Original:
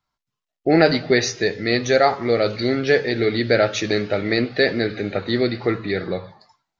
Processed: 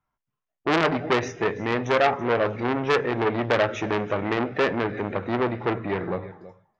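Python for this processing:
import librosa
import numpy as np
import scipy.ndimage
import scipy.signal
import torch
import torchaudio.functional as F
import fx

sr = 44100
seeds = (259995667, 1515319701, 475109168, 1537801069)

y = np.convolve(x, np.full(10, 1.0 / 10))[:len(x)]
y = y + 10.0 ** (-19.0 / 20.0) * np.pad(y, (int(330 * sr / 1000.0), 0))[:len(y)]
y = fx.transformer_sat(y, sr, knee_hz=2200.0)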